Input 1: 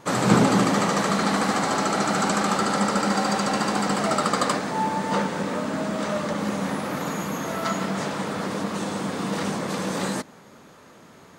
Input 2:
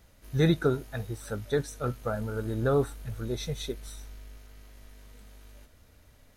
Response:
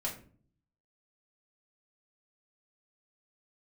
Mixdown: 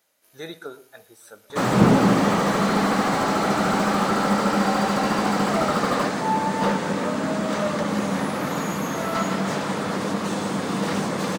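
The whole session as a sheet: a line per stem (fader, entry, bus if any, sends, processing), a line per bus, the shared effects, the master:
+2.5 dB, 1.50 s, no send, no echo send, no processing
−7.5 dB, 0.00 s, send −14 dB, echo send −18.5 dB, high-pass filter 430 Hz 12 dB per octave; high-shelf EQ 5,800 Hz +6.5 dB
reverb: on, RT60 0.45 s, pre-delay 3 ms
echo: single-tap delay 118 ms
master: slew-rate limiting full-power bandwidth 130 Hz

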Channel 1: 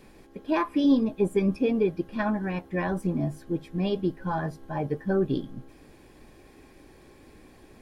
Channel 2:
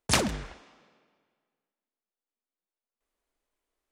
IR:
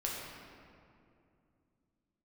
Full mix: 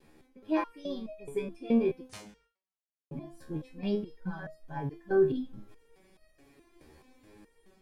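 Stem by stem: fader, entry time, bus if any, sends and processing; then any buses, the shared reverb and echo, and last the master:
+0.5 dB, 0.00 s, muted 0:02.08–0:03.11, no send, no processing
−17.5 dB, 2.00 s, no send, no processing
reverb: not used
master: noise gate with hold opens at −44 dBFS; automatic gain control gain up to 4 dB; step-sequenced resonator 4.7 Hz 77–630 Hz

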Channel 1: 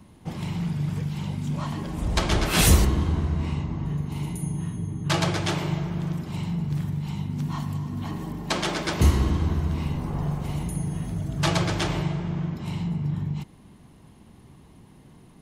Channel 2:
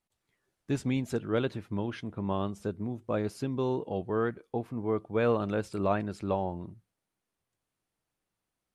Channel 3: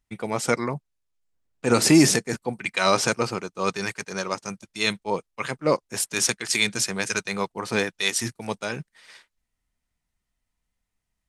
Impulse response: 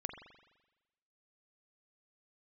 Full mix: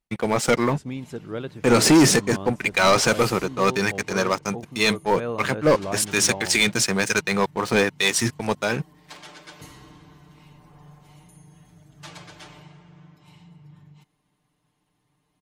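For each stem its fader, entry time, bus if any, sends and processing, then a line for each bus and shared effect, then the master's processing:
−16.5 dB, 0.60 s, no send, low-shelf EQ 460 Hz −11 dB; soft clipping −15.5 dBFS, distortion −20 dB; comb filter 6.7 ms, depth 99%
−3.0 dB, 0.00 s, no send, no processing
−4.0 dB, 0.00 s, no send, high-shelf EQ 4,900 Hz −6 dB; leveller curve on the samples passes 3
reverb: not used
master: no processing

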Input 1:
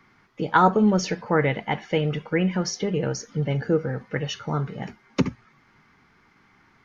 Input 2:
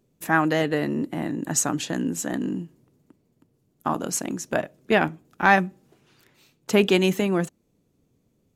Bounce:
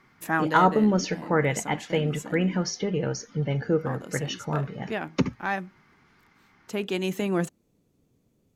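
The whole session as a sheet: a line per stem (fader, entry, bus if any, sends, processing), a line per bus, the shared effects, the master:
−2.0 dB, 0.00 s, no send, no processing
−0.5 dB, 0.00 s, no send, automatic ducking −11 dB, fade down 0.90 s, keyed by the first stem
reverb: not used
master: hard clipping −8 dBFS, distortion −47 dB

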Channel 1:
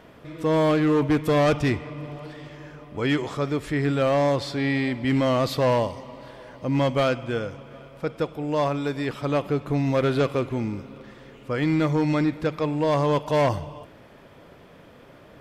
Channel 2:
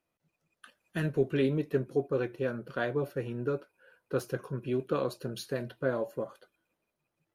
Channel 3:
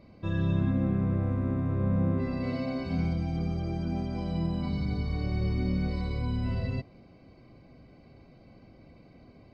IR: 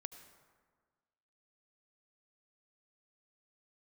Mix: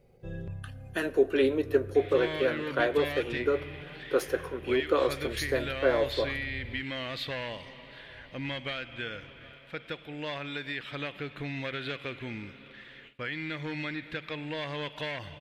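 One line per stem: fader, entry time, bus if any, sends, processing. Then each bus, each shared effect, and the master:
−11.5 dB, 1.70 s, no send, noise gate with hold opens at −36 dBFS; flat-topped bell 2,500 Hz +15.5 dB; downward compressor 10 to 1, threshold −20 dBFS, peak gain reduction 11 dB
+2.5 dB, 0.00 s, send −3 dB, high-pass filter 310 Hz 24 dB per octave
−3.0 dB, 0.00 s, no send, parametric band 4,300 Hz −11 dB 2 octaves; comb filter 2.4 ms, depth 84%; step-sequenced phaser 2.1 Hz 300–3,900 Hz; automatic ducking −12 dB, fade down 0.30 s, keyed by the second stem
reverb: on, RT60 1.6 s, pre-delay 68 ms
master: no processing

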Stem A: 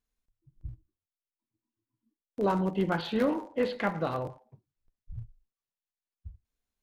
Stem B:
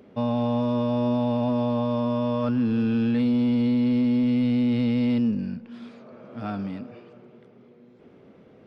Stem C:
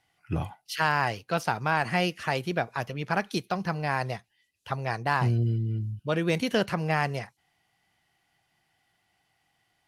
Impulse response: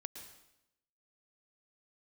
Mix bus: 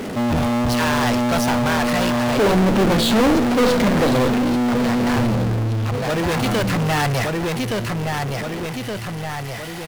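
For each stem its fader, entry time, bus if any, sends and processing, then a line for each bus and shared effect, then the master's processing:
−5.5 dB, 0.00 s, no send, echo send −18 dB, graphic EQ with 10 bands 125 Hz +6 dB, 250 Hz +12 dB, 500 Hz +12 dB, 1,000 Hz −10 dB, 4,000 Hz +11 dB; leveller curve on the samples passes 2
−6.5 dB, 0.00 s, no send, no echo send, no processing
+2.0 dB, 0.00 s, no send, echo send −16 dB, automatic ducking −9 dB, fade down 1.15 s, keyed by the first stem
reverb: not used
echo: repeating echo 1,170 ms, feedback 23%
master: asymmetric clip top −34 dBFS; power curve on the samples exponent 0.35

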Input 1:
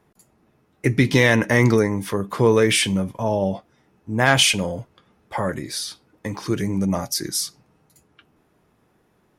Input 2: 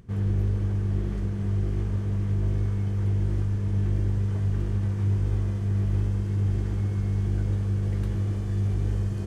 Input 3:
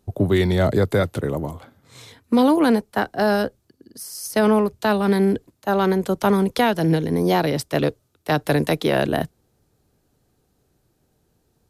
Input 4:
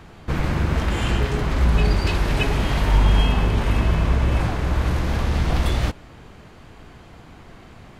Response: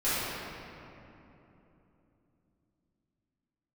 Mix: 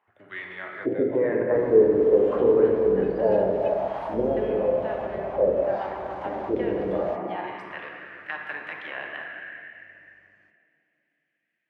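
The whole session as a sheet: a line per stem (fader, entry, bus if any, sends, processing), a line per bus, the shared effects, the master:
+1.5 dB, 0.00 s, send −10.5 dB, downward compressor 4 to 1, threshold −19 dBFS, peak gain reduction 7.5 dB; auto-filter low-pass sine 0.91 Hz 330–2,000 Hz
−13.0 dB, 1.25 s, no send, no processing
−12.0 dB, 0.00 s, send −10.5 dB, flat-topped bell 2,300 Hz +15.5 dB 1.2 octaves
+0.5 dB, 1.25 s, no send, no processing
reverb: on, RT60 3.2 s, pre-delay 4 ms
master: envelope filter 460–1,900 Hz, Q 3.4, down, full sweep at −10 dBFS

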